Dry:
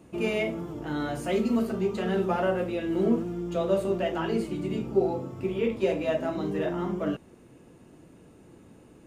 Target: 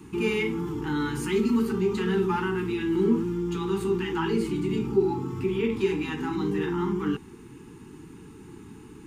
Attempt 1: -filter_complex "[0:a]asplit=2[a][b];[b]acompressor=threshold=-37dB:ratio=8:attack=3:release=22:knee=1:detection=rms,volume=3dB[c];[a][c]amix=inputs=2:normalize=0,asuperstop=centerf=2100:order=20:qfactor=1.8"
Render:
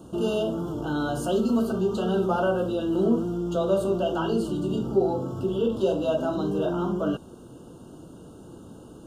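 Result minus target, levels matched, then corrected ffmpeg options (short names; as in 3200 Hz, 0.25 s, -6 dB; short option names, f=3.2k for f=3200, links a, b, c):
2000 Hz band -6.0 dB
-filter_complex "[0:a]asplit=2[a][b];[b]acompressor=threshold=-37dB:ratio=8:attack=3:release=22:knee=1:detection=rms,volume=3dB[c];[a][c]amix=inputs=2:normalize=0,asuperstop=centerf=600:order=20:qfactor=1.8"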